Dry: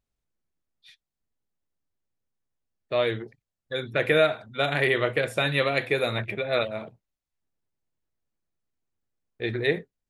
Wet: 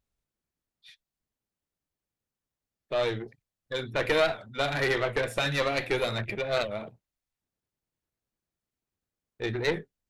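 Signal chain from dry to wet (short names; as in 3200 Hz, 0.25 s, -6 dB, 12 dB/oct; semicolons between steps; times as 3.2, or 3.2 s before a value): one diode to ground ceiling -26.5 dBFS; record warp 78 rpm, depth 100 cents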